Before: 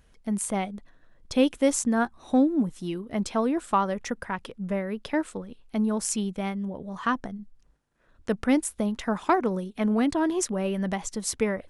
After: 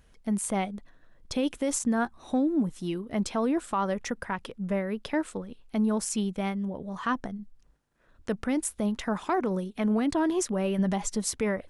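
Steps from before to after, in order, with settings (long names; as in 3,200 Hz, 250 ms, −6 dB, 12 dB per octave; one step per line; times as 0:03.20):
0:10.78–0:11.22: comb filter 4.9 ms, depth 71%
brickwall limiter −18.5 dBFS, peak gain reduction 9 dB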